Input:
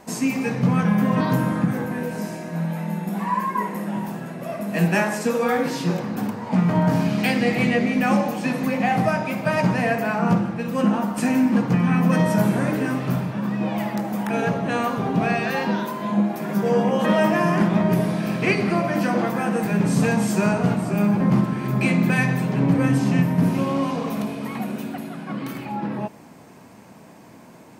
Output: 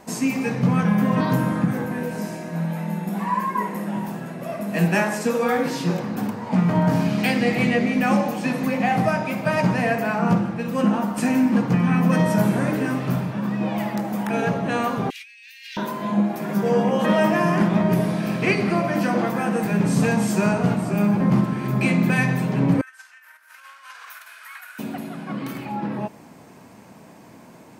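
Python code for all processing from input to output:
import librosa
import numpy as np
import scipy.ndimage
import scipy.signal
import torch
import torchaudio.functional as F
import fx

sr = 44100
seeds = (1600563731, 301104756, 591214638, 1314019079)

y = fx.chain(x, sr, fx.steep_highpass(hz=2100.0, slope=48),
    fx.over_compress(threshold_db=-43.0, ratio=-1.0), at=(15.1, 15.77))
y = fx.chain(y, sr, fx.high_shelf(hz=6800.0, db=10.0),
    fx.over_compress(threshold_db=-26.0, ratio=-1.0),
    fx.ladder_highpass(hz=1400.0, resonance_pct=75), at=(22.81, 24.79))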